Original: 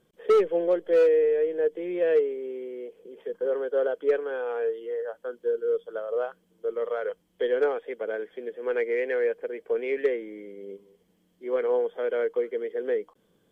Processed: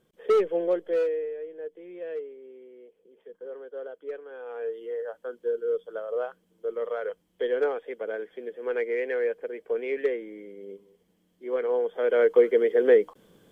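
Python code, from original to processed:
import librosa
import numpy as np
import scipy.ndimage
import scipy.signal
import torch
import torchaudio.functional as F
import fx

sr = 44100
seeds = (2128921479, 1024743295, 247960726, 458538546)

y = fx.gain(x, sr, db=fx.line((0.78, -1.5), (1.38, -12.5), (4.26, -12.5), (4.83, -1.5), (11.75, -1.5), (12.42, 9.0)))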